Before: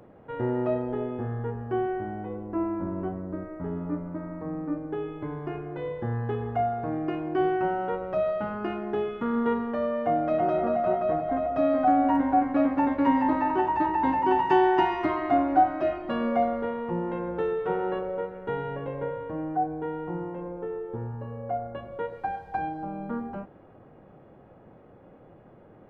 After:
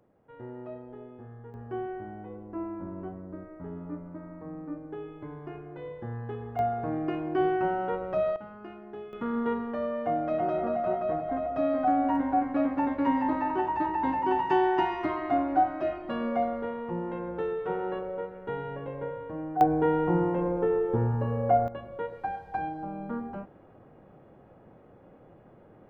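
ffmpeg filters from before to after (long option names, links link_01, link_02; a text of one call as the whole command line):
ffmpeg -i in.wav -af "asetnsamples=nb_out_samples=441:pad=0,asendcmd='1.54 volume volume -7dB;6.59 volume volume -1dB;8.36 volume volume -13dB;9.13 volume volume -3.5dB;19.61 volume volume 8dB;21.68 volume volume -2dB',volume=-14.5dB" out.wav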